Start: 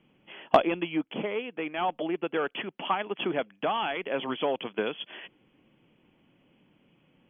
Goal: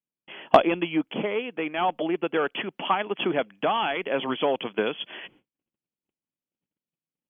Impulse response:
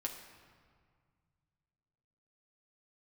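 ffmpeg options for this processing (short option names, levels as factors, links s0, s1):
-af "agate=range=0.01:threshold=0.00126:ratio=16:detection=peak,volume=1.58"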